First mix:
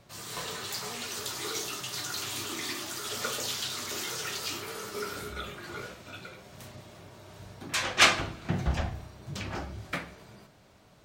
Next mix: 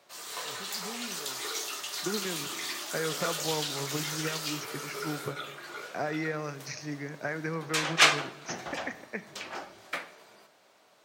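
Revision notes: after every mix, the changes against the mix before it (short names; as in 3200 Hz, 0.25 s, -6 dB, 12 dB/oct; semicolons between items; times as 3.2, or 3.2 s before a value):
first voice: remove Chebyshev high-pass 340 Hz, order 2; second voice: unmuted; background: add HPF 450 Hz 12 dB/oct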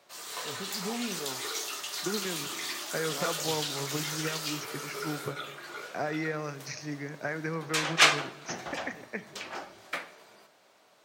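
first voice +7.5 dB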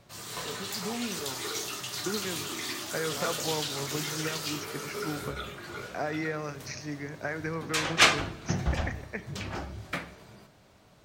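background: remove HPF 450 Hz 12 dB/oct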